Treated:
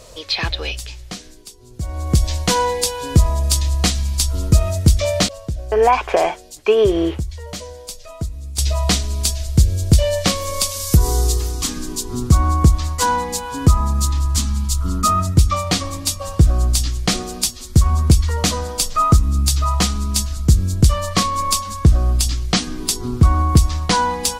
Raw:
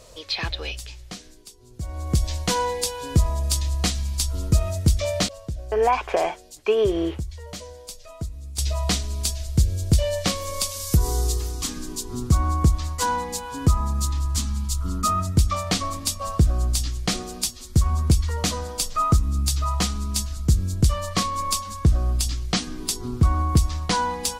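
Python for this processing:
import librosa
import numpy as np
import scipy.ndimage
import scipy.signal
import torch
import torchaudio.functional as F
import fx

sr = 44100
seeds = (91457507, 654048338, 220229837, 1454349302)

y = fx.notch_comb(x, sr, f0_hz=220.0, at=(15.34, 16.44))
y = y * 10.0 ** (6.0 / 20.0)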